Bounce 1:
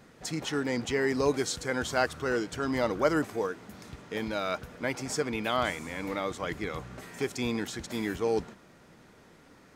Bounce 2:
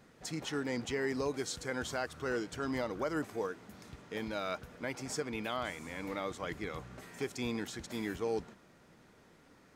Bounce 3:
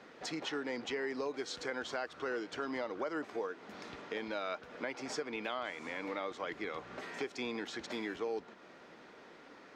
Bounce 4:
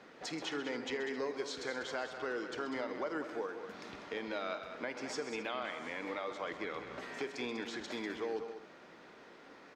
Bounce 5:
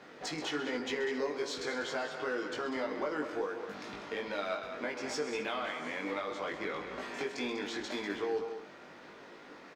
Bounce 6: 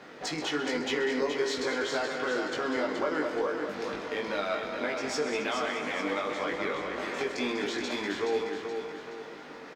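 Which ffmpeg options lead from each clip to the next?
-af "alimiter=limit=-18dB:level=0:latency=1:release=190,volume=-5.5dB"
-filter_complex "[0:a]acrossover=split=250 5500:gain=0.112 1 0.0708[a][b][c];[a][b][c]amix=inputs=3:normalize=0,acompressor=threshold=-48dB:ratio=2.5,volume=8.5dB"
-af "aecho=1:1:49|78|131|196|265:0.15|0.106|0.237|0.335|0.126,volume=-1dB"
-filter_complex "[0:a]asplit=2[a][b];[b]asoftclip=type=hard:threshold=-39.5dB,volume=-10.5dB[c];[a][c]amix=inputs=2:normalize=0,asplit=2[d][e];[e]adelay=20,volume=-2.5dB[f];[d][f]amix=inputs=2:normalize=0"
-af "aecho=1:1:424|848|1272|1696|2120:0.473|0.203|0.0875|0.0376|0.0162,volume=4.5dB"

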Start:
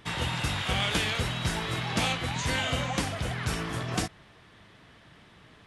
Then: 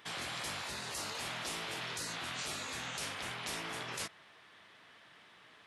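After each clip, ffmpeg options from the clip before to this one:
-af "highpass=f=1k:p=1,afftfilt=real='re*lt(hypot(re,im),0.0355)':imag='im*lt(hypot(re,im),0.0355)':win_size=1024:overlap=0.75,equalizer=f=8.2k:w=0.5:g=-3.5"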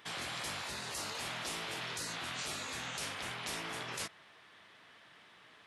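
-af anull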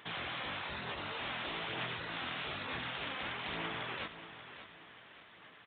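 -filter_complex "[0:a]aphaser=in_gain=1:out_gain=1:delay=3.9:decay=0.29:speed=1.1:type=sinusoidal,asplit=2[a][b];[b]aecho=0:1:583|1166|1749|2332:0.251|0.1|0.0402|0.0161[c];[a][c]amix=inputs=2:normalize=0,aresample=8000,aresample=44100,volume=1dB"

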